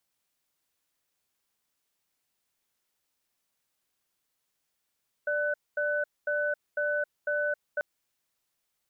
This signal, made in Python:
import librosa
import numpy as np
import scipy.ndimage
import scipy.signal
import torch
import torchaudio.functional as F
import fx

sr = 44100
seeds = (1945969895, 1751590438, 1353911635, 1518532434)

y = fx.cadence(sr, length_s=2.54, low_hz=590.0, high_hz=1500.0, on_s=0.27, off_s=0.23, level_db=-28.5)